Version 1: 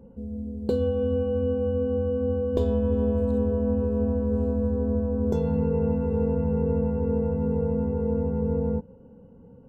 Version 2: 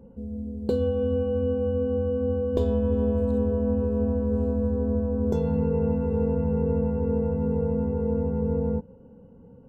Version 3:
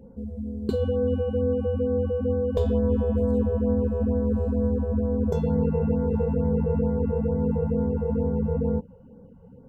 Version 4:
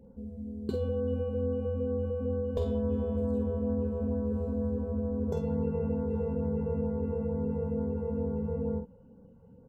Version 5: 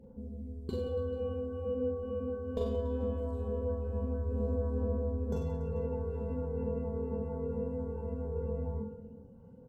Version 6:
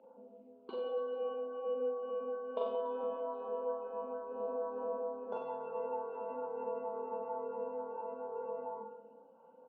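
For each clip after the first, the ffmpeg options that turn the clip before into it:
ffmpeg -i in.wav -af anull out.wav
ffmpeg -i in.wav -af "afftfilt=real='re*(1-between(b*sr/1024,260*pow(3100/260,0.5+0.5*sin(2*PI*2.2*pts/sr))/1.41,260*pow(3100/260,0.5+0.5*sin(2*PI*2.2*pts/sr))*1.41))':imag='im*(1-between(b*sr/1024,260*pow(3100/260,0.5+0.5*sin(2*PI*2.2*pts/sr))/1.41,260*pow(3100/260,0.5+0.5*sin(2*PI*2.2*pts/sr))*1.41))':win_size=1024:overlap=0.75,volume=1.5dB" out.wav
ffmpeg -i in.wav -filter_complex "[0:a]asplit=2[link_01][link_02];[link_02]adelay=48,volume=-7dB[link_03];[link_01][link_03]amix=inputs=2:normalize=0,volume=-7dB" out.wav
ffmpeg -i in.wav -af "aecho=1:1:40|96|174.4|284.2|437.8:0.631|0.398|0.251|0.158|0.1,aphaser=in_gain=1:out_gain=1:delay=4.6:decay=0.3:speed=0.21:type=sinusoidal,volume=-4dB" out.wav
ffmpeg -i in.wav -af "highpass=frequency=360:width=0.5412,highpass=frequency=360:width=1.3066,equalizer=frequency=410:width_type=q:width=4:gain=-9,equalizer=frequency=630:width_type=q:width=4:gain=7,equalizer=frequency=910:width_type=q:width=4:gain=10,equalizer=frequency=1300:width_type=q:width=4:gain=8,equalizer=frequency=1900:width_type=q:width=4:gain=-10,equalizer=frequency=2700:width_type=q:width=4:gain=5,lowpass=frequency=3100:width=0.5412,lowpass=frequency=3100:width=1.3066" out.wav

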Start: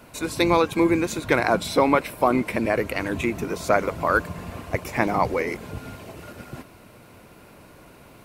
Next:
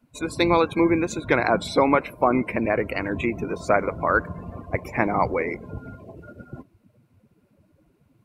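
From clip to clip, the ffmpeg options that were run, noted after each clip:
ffmpeg -i in.wav -af "afftdn=noise_reduction=23:noise_floor=-36" out.wav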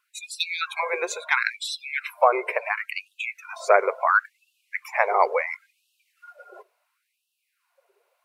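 ffmpeg -i in.wav -af "afftfilt=real='re*gte(b*sr/1024,350*pow(2600/350,0.5+0.5*sin(2*PI*0.72*pts/sr)))':imag='im*gte(b*sr/1024,350*pow(2600/350,0.5+0.5*sin(2*PI*0.72*pts/sr)))':win_size=1024:overlap=0.75,volume=3dB" out.wav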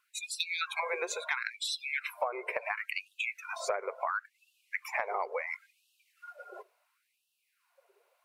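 ffmpeg -i in.wav -af "acompressor=threshold=-28dB:ratio=10,volume=-1.5dB" out.wav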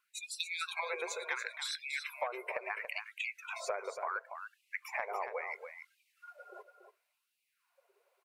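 ffmpeg -i in.wav -af "aecho=1:1:283:0.376,volume=-4.5dB" out.wav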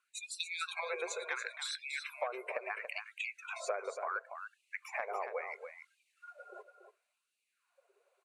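ffmpeg -i in.wav -af "highpass=frequency=220:width=0.5412,highpass=frequency=220:width=1.3066,equalizer=frequency=310:width_type=q:width=4:gain=-4,equalizer=frequency=930:width_type=q:width=4:gain=-6,equalizer=frequency=2000:width_type=q:width=4:gain=-5,equalizer=frequency=3200:width_type=q:width=4:gain=-4,equalizer=frequency=5200:width_type=q:width=4:gain=-7,lowpass=frequency=9800:width=0.5412,lowpass=frequency=9800:width=1.3066,volume=1.5dB" out.wav

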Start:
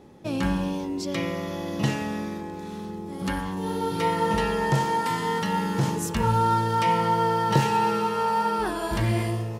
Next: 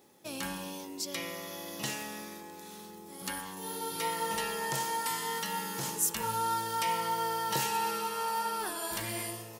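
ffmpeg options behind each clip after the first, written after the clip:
ffmpeg -i in.wav -af "aemphasis=mode=production:type=riaa,volume=-8.5dB" out.wav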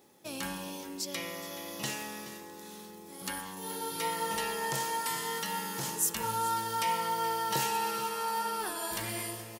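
ffmpeg -i in.wav -af "aecho=1:1:423:0.178" out.wav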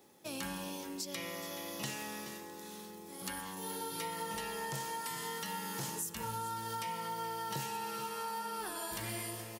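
ffmpeg -i in.wav -filter_complex "[0:a]acrossover=split=210[link_01][link_02];[link_02]acompressor=threshold=-36dB:ratio=6[link_03];[link_01][link_03]amix=inputs=2:normalize=0,volume=-1dB" out.wav

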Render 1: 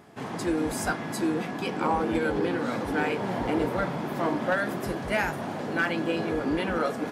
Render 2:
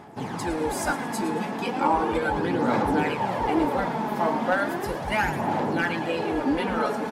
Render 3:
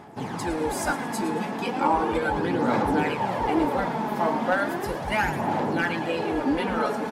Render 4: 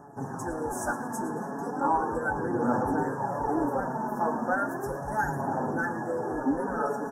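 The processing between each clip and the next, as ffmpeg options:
ffmpeg -i in.wav -filter_complex "[0:a]equalizer=frequency=860:width=6.3:gain=10,aphaser=in_gain=1:out_gain=1:delay=4.7:decay=0.5:speed=0.36:type=sinusoidal,asplit=6[link_01][link_02][link_03][link_04][link_05][link_06];[link_02]adelay=112,afreqshift=110,volume=-13dB[link_07];[link_03]adelay=224,afreqshift=220,volume=-19.6dB[link_08];[link_04]adelay=336,afreqshift=330,volume=-26.1dB[link_09];[link_05]adelay=448,afreqshift=440,volume=-32.7dB[link_10];[link_06]adelay=560,afreqshift=550,volume=-39.2dB[link_11];[link_01][link_07][link_08][link_09][link_10][link_11]amix=inputs=6:normalize=0" out.wav
ffmpeg -i in.wav -af anull out.wav
ffmpeg -i in.wav -af "flanger=delay=6.9:depth=1.5:regen=40:speed=0.58:shape=triangular,asuperstop=centerf=3100:order=20:qfactor=0.83" out.wav

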